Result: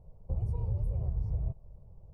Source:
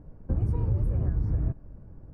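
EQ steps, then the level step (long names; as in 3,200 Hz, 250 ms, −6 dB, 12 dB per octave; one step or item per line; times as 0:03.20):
parametric band 1,200 Hz −3 dB 0.2 octaves
phaser with its sweep stopped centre 670 Hz, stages 4
−4.5 dB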